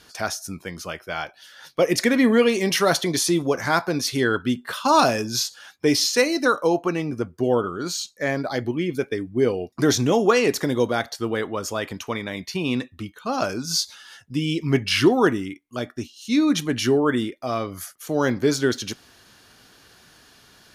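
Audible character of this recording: noise floor -54 dBFS; spectral tilt -4.0 dB/oct

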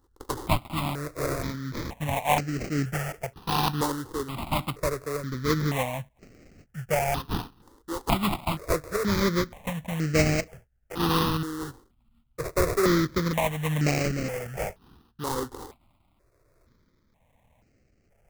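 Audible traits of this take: aliases and images of a low sample rate 1600 Hz, jitter 20%; tremolo triangle 1.1 Hz, depth 50%; notches that jump at a steady rate 2.1 Hz 650–3500 Hz

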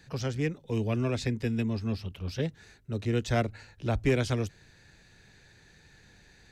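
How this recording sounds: noise floor -59 dBFS; spectral tilt -6.5 dB/oct

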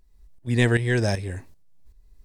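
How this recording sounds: tremolo saw up 2.6 Hz, depth 70%

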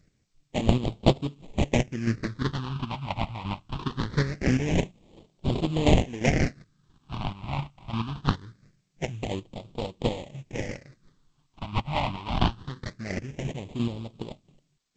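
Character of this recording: aliases and images of a low sample rate 1400 Hz, jitter 20%; chopped level 2.9 Hz, depth 60%, duty 25%; phasing stages 6, 0.23 Hz, lowest notch 440–1700 Hz; G.722

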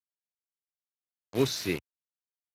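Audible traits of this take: a quantiser's noise floor 6-bit, dither none; Speex

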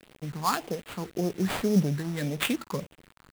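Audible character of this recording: a quantiser's noise floor 8-bit, dither none; phasing stages 4, 1.8 Hz, lowest notch 490–1600 Hz; aliases and images of a low sample rate 5800 Hz, jitter 20%

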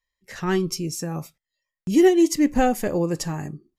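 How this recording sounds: noise floor -89 dBFS; spectral tilt -5.5 dB/oct

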